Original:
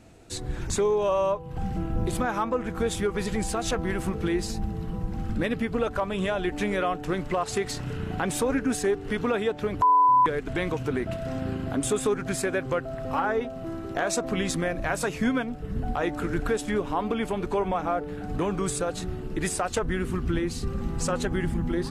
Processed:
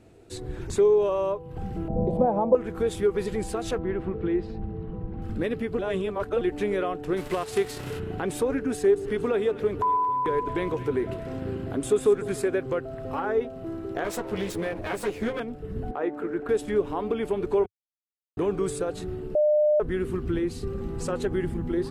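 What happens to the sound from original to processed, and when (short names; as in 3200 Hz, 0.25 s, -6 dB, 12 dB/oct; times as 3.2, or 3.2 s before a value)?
1.88–2.55 EQ curve 110 Hz 0 dB, 200 Hz +11 dB, 350 Hz -4 dB, 550 Hz +14 dB, 900 Hz +6 dB, 1300 Hz -14 dB, 3200 Hz -16 dB, 7300 Hz -25 dB
3.78–5.22 air absorption 350 m
5.79–6.41 reverse
7.16–7.98 spectral whitening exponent 0.6
8.73–12.48 split-band echo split 1000 Hz, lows 0.147 s, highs 0.228 s, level -14.5 dB
14.04–15.4 minimum comb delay 9.6 ms
15.91–16.49 three-band isolator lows -22 dB, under 200 Hz, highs -14 dB, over 2300 Hz
17.66–18.37 mute
19.35–19.8 bleep 602 Hz -15 dBFS
whole clip: fifteen-band EQ 100 Hz +4 dB, 400 Hz +10 dB, 6300 Hz -4 dB; gain -5 dB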